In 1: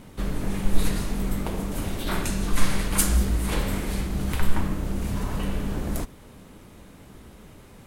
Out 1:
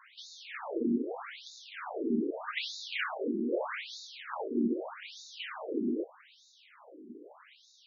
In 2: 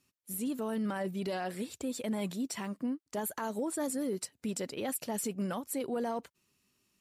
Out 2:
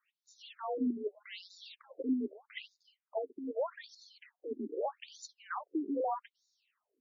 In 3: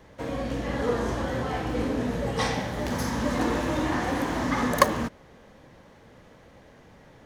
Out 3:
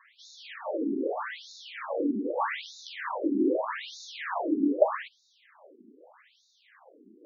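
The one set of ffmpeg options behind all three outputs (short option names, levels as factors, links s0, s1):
-filter_complex "[0:a]afreqshift=41,acrossover=split=4200[s0][s1];[s1]acompressor=threshold=0.00447:ratio=4:attack=1:release=60[s2];[s0][s2]amix=inputs=2:normalize=0,afftfilt=real='re*between(b*sr/1024,290*pow(5100/290,0.5+0.5*sin(2*PI*0.81*pts/sr))/1.41,290*pow(5100/290,0.5+0.5*sin(2*PI*0.81*pts/sr))*1.41)':imag='im*between(b*sr/1024,290*pow(5100/290,0.5+0.5*sin(2*PI*0.81*pts/sr))/1.41,290*pow(5100/290,0.5+0.5*sin(2*PI*0.81*pts/sr))*1.41)':win_size=1024:overlap=0.75,volume=1.5"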